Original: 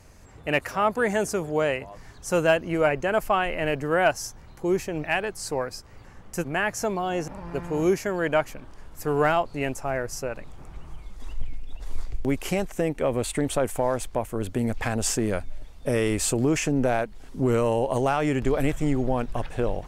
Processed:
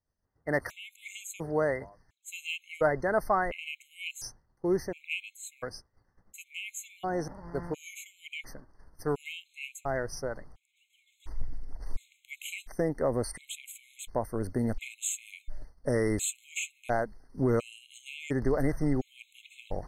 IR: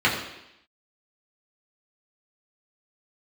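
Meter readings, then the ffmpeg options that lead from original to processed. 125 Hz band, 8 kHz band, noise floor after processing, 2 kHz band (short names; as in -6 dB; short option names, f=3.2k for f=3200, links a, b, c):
-7.0 dB, -5.5 dB, -74 dBFS, -8.0 dB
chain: -af "agate=range=-33dB:threshold=-32dB:ratio=3:detection=peak,afftfilt=real='re*gt(sin(2*PI*0.71*pts/sr)*(1-2*mod(floor(b*sr/1024/2100),2)),0)':imag='im*gt(sin(2*PI*0.71*pts/sr)*(1-2*mod(floor(b*sr/1024/2100),2)),0)':win_size=1024:overlap=0.75,volume=-3.5dB"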